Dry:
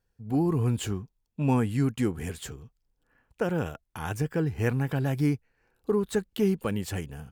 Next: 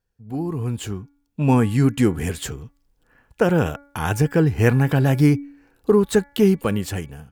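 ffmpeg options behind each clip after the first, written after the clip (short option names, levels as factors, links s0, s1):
-af "bandreject=f=283.8:t=h:w=4,bandreject=f=567.6:t=h:w=4,bandreject=f=851.4:t=h:w=4,bandreject=f=1135.2:t=h:w=4,bandreject=f=1419:t=h:w=4,bandreject=f=1702.8:t=h:w=4,bandreject=f=1986.6:t=h:w=4,bandreject=f=2270.4:t=h:w=4,dynaudnorm=f=510:g=5:m=4.47,volume=0.841"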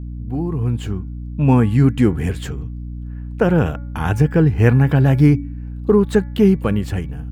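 -af "aeval=exprs='val(0)+0.0251*(sin(2*PI*60*n/s)+sin(2*PI*2*60*n/s)/2+sin(2*PI*3*60*n/s)/3+sin(2*PI*4*60*n/s)/4+sin(2*PI*5*60*n/s)/5)':c=same,bass=f=250:g=4,treble=f=4000:g=-9,volume=1.12"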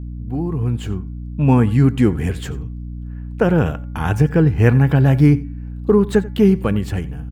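-af "aecho=1:1:89:0.1"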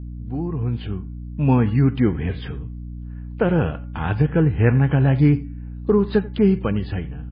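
-af "volume=0.708" -ar 11025 -c:a libmp3lame -b:a 16k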